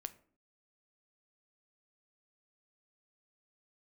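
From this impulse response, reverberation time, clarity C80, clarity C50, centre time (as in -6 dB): 0.50 s, 21.0 dB, 17.5 dB, 3 ms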